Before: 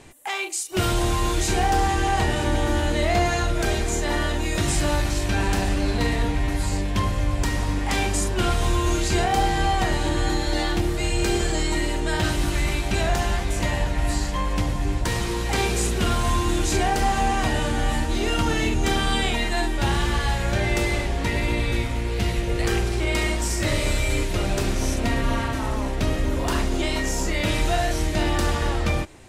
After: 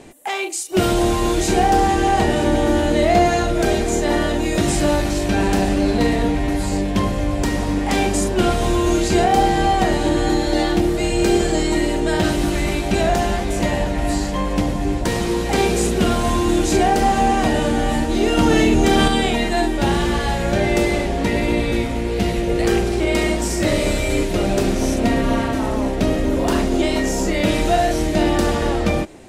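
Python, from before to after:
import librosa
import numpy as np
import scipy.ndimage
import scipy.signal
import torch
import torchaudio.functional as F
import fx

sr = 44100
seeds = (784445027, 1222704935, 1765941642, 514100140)

y = fx.curve_eq(x, sr, hz=(120.0, 190.0, 700.0, 990.0), db=(0, 9, 8, 2))
y = fx.env_flatten(y, sr, amount_pct=100, at=(18.37, 19.08))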